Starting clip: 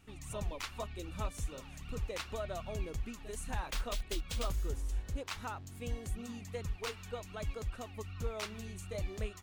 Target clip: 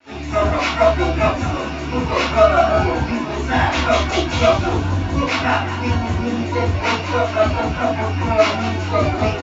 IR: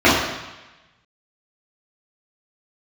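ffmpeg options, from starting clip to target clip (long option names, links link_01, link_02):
-filter_complex "[0:a]highpass=56,equalizer=frequency=710:width_type=o:width=0.8:gain=9,acrossover=split=200|1500|5200[link_01][link_02][link_03][link_04];[link_03]acontrast=71[link_05];[link_01][link_02][link_05][link_04]amix=inputs=4:normalize=0,acrusher=bits=8:mix=0:aa=0.000001,asplit=2[link_06][link_07];[link_07]asetrate=88200,aresample=44100,atempo=0.5,volume=-3dB[link_08];[link_06][link_08]amix=inputs=2:normalize=0,aresample=16000,aresample=44100,asplit=7[link_09][link_10][link_11][link_12][link_13][link_14][link_15];[link_10]adelay=199,afreqshift=110,volume=-10.5dB[link_16];[link_11]adelay=398,afreqshift=220,volume=-15.5dB[link_17];[link_12]adelay=597,afreqshift=330,volume=-20.6dB[link_18];[link_13]adelay=796,afreqshift=440,volume=-25.6dB[link_19];[link_14]adelay=995,afreqshift=550,volume=-30.6dB[link_20];[link_15]adelay=1194,afreqshift=660,volume=-35.7dB[link_21];[link_09][link_16][link_17][link_18][link_19][link_20][link_21]amix=inputs=7:normalize=0[link_22];[1:a]atrim=start_sample=2205,afade=type=out:start_time=0.15:duration=0.01,atrim=end_sample=7056[link_23];[link_22][link_23]afir=irnorm=-1:irlink=0,volume=-10dB"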